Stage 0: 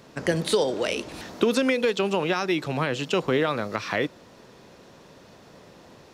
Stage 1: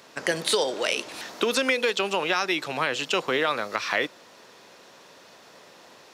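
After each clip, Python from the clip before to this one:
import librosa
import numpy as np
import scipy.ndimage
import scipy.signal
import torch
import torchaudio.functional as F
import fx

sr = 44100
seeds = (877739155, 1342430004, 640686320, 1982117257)

y = fx.highpass(x, sr, hz=950.0, slope=6)
y = F.gain(torch.from_numpy(y), 4.5).numpy()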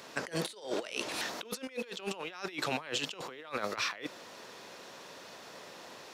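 y = fx.over_compress(x, sr, threshold_db=-32.0, ratio=-0.5)
y = F.gain(torch.from_numpy(y), -5.0).numpy()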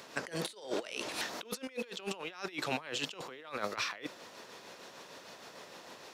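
y = x * (1.0 - 0.37 / 2.0 + 0.37 / 2.0 * np.cos(2.0 * np.pi * 6.6 * (np.arange(len(x)) / sr)))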